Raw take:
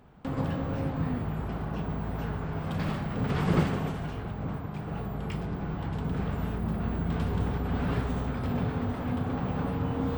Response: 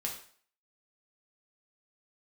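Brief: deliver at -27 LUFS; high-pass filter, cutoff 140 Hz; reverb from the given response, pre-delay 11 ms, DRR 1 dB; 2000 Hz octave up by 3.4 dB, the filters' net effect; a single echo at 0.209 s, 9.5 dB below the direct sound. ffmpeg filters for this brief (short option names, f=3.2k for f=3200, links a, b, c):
-filter_complex "[0:a]highpass=140,equalizer=f=2k:t=o:g=4.5,aecho=1:1:209:0.335,asplit=2[a][b];[1:a]atrim=start_sample=2205,adelay=11[c];[b][c]afir=irnorm=-1:irlink=0,volume=-2.5dB[d];[a][d]amix=inputs=2:normalize=0,volume=3dB"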